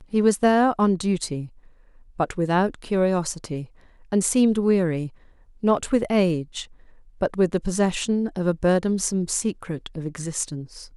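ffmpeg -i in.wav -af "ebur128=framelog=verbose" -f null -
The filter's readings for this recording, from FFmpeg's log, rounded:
Integrated loudness:
  I:         -23.1 LUFS
  Threshold: -33.8 LUFS
Loudness range:
  LRA:         2.0 LU
  Threshold: -43.9 LUFS
  LRA low:   -25.1 LUFS
  LRA high:  -23.1 LUFS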